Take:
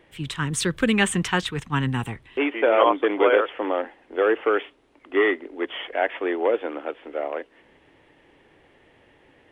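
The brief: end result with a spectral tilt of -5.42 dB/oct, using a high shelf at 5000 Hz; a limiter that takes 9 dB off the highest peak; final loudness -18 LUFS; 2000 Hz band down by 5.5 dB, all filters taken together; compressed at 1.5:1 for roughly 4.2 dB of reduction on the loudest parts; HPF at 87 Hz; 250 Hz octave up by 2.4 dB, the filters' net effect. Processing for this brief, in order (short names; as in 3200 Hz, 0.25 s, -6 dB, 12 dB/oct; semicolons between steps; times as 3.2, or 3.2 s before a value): HPF 87 Hz; bell 250 Hz +3.5 dB; bell 2000 Hz -6 dB; high shelf 5000 Hz -7.5 dB; compressor 1.5:1, threshold -24 dBFS; gain +10.5 dB; limiter -6.5 dBFS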